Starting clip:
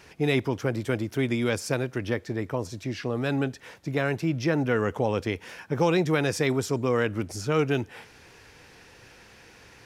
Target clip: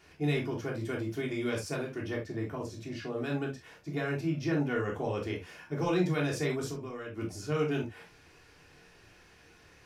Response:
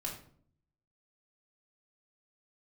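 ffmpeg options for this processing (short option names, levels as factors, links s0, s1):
-filter_complex "[0:a]asettb=1/sr,asplit=3[s0][s1][s2];[s0]atrim=end=6.704[s3];[s1]atrim=start=6.7:end=7.18,asetpts=PTS-STARTPTS,afade=t=in:d=0.004:c=qsin,afade=t=out:st=0.476:d=0.004:c=qsin,acompressor=threshold=0.0398:ratio=12[s4];[s2]atrim=start=7.176[s5];[s3][s4]acrossfade=d=0.004:c1=hsin:c2=qsin[s6];[s6][s5]acrossfade=d=0.004:c1=qsin:c2=hsin[s7];[1:a]atrim=start_sample=2205,atrim=end_sample=3528[s8];[s7][s8]afir=irnorm=-1:irlink=0,volume=0.447"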